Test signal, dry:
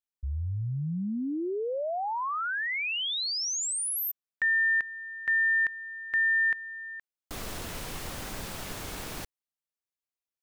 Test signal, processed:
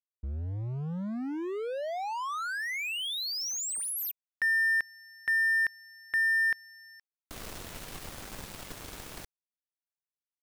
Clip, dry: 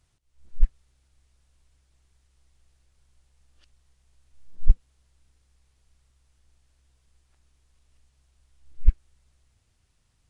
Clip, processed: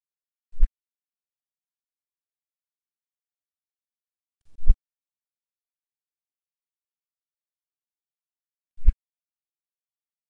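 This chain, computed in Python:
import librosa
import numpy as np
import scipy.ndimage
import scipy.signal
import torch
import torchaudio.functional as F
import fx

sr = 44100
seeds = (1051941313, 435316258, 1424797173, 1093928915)

y = np.sign(x) * np.maximum(np.abs(x) - 10.0 ** (-40.5 / 20.0), 0.0)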